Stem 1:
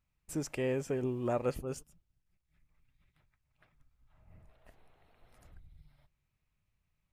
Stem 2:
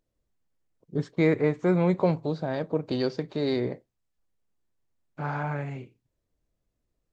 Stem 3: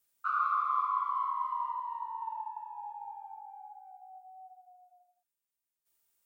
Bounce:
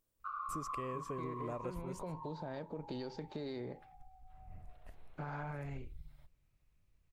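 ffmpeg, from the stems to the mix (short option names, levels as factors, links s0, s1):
-filter_complex "[0:a]lowshelf=f=75:g=11,adelay=200,volume=1[s0];[1:a]alimiter=limit=0.075:level=0:latency=1:release=45,volume=0.501[s1];[2:a]equalizer=f=1100:t=o:w=0.2:g=12,tremolo=f=1.3:d=0.39,volume=0.316[s2];[s0][s1][s2]amix=inputs=3:normalize=0,acompressor=threshold=0.0112:ratio=5"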